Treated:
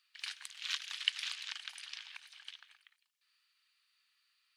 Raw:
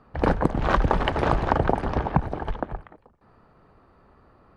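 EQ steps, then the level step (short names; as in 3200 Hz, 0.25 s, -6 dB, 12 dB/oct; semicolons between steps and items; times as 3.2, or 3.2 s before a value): inverse Chebyshev high-pass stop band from 510 Hz, stop band 80 dB; +5.5 dB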